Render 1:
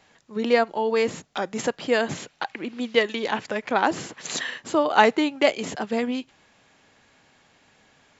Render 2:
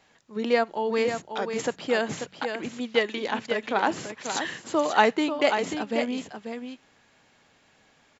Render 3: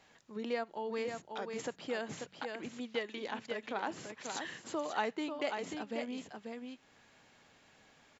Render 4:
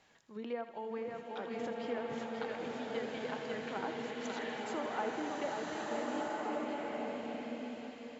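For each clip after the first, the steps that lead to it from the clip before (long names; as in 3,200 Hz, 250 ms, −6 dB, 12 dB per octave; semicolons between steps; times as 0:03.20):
hum removal 46.63 Hz, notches 4; on a send: single-tap delay 539 ms −7.5 dB; on the sum: level −3 dB
downward compressor 1.5 to 1, threshold −50 dBFS, peak gain reduction 13 dB; level −2.5 dB
treble cut that deepens with the level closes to 1,400 Hz, closed at −32.5 dBFS; feedback echo with a high-pass in the loop 81 ms, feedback 72%, level −12 dB; slow-attack reverb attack 1,490 ms, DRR −2.5 dB; level −3 dB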